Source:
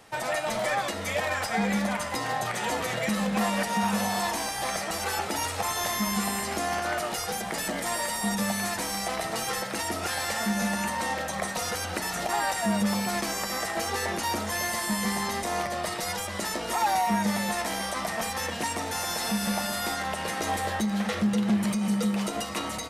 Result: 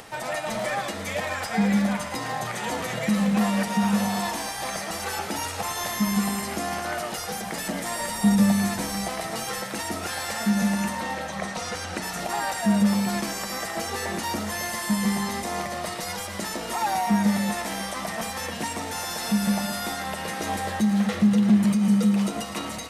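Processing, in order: dynamic bell 180 Hz, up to +8 dB, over -41 dBFS, Q 1; upward compressor, threshold -35 dBFS; 8.00–9.09 s: bass shelf 330 Hz +7 dB; 11.00–12.02 s: low-pass 4.8 kHz -> 9.8 kHz 12 dB/octave; on a send: thinning echo 112 ms, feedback 81%, high-pass 810 Hz, level -12 dB; on the sum: trim -1 dB

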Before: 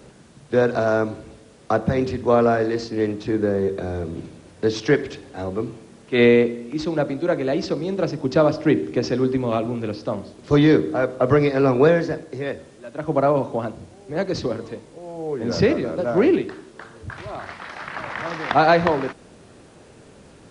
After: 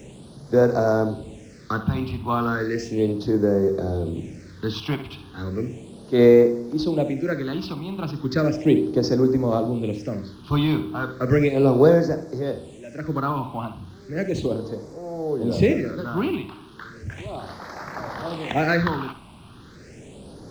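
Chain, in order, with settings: companding laws mixed up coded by mu; phase shifter stages 6, 0.35 Hz, lowest notch 470–2900 Hz; on a send: flutter echo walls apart 11.1 m, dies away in 0.33 s

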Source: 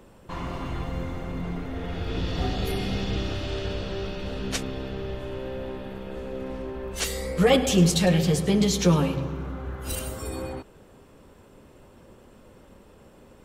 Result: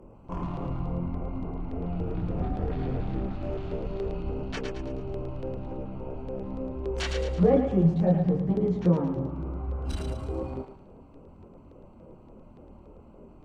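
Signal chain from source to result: local Wiener filter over 25 samples; hum notches 50/100/150/200 Hz; low-pass that closes with the level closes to 770 Hz, closed at -21.5 dBFS; in parallel at +1 dB: compression, threshold -34 dBFS, peak gain reduction 18 dB; on the sum: chorus voices 2, 0.35 Hz, delay 25 ms, depth 3.6 ms; LFO notch square 3.5 Hz 470–3900 Hz; on a send: thinning echo 110 ms, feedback 45%, high-pass 840 Hz, level -4.5 dB

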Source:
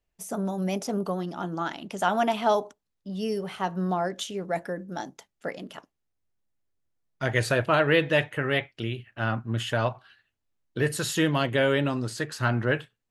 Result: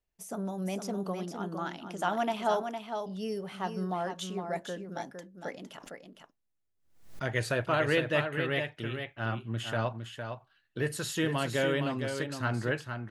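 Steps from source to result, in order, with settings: delay 459 ms -7 dB; 5.71–7.25 s: swell ahead of each attack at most 94 dB/s; trim -6 dB

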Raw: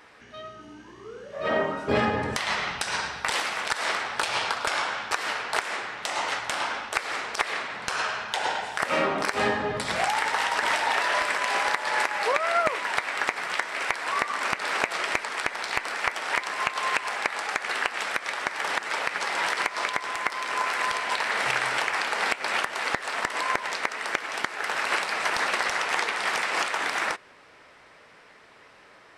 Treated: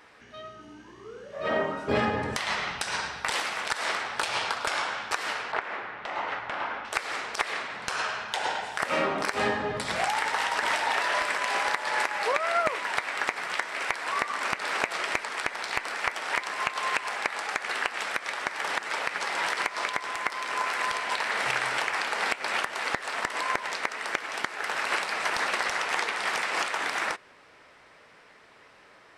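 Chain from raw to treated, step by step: 5.52–6.85 s: low-pass 2.2 kHz 12 dB/octave; trim -2 dB

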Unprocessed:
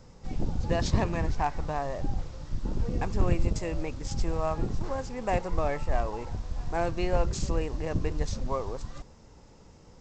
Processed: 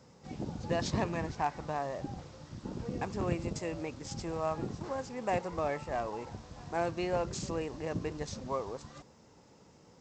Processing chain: high-pass 130 Hz 12 dB/octave; trim -3 dB

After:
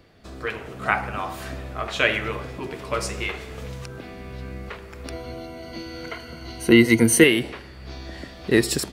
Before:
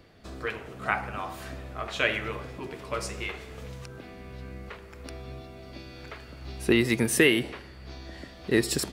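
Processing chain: 5.12–7.24 s: rippled EQ curve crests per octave 1.9, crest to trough 14 dB; level rider gain up to 5 dB; trim +1 dB

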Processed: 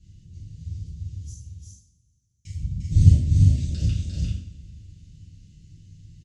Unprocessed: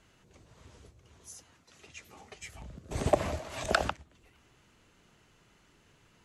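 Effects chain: Chebyshev band-stop 140–5900 Hz, order 2; bass shelf 290 Hz +9.5 dB; 3.12–3.78 s: compression 6:1, threshold -41 dBFS, peak gain reduction 15 dB; distance through air 110 m; 1.33–2.45 s: mute; multi-tap echo 350/392 ms -5/-5 dB; two-slope reverb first 0.54 s, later 3.6 s, from -27 dB, DRR -8 dB; trim +3.5 dB

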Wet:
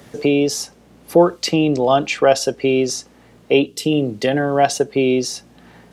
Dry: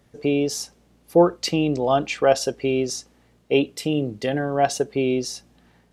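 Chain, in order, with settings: time-frequency box 3.66–3.92 s, 480–2600 Hz -8 dB; high-pass 110 Hz 6 dB/octave; three bands compressed up and down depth 40%; trim +5.5 dB

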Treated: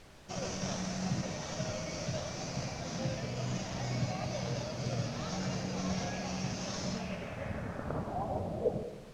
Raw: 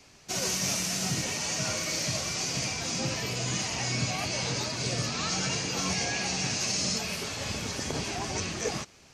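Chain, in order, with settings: FFT filter 200 Hz 0 dB, 390 Hz -7 dB, 590 Hz +3 dB, 920 Hz -6 dB, 1.9 kHz -7 dB, 4.1 kHz -19 dB, 5.8 kHz -2 dB; in parallel at -6 dB: decimation with a swept rate 18×, swing 60% 0.67 Hz; on the sum: low-pass sweep 4.2 kHz -> 360 Hz, 6.85–9.04 s; added noise pink -50 dBFS; distance through air 52 m; reverberation RT60 1.3 s, pre-delay 50 ms, DRR 10 dB; trim -5.5 dB

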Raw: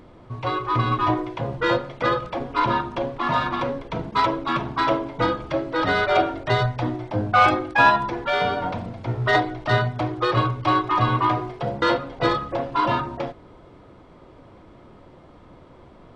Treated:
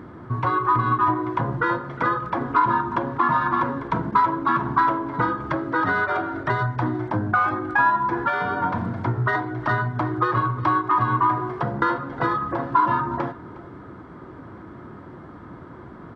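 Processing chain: high-pass 84 Hz; compression 6:1, threshold -29 dBFS, peak gain reduction 17 dB; FFT filter 360 Hz 0 dB, 540 Hz -9 dB, 1.6 kHz +4 dB, 2.5 kHz -12 dB; on a send: delay 359 ms -18.5 dB; on the sum: dynamic bell 1 kHz, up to +7 dB, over -50 dBFS, Q 4.3; trim +9 dB

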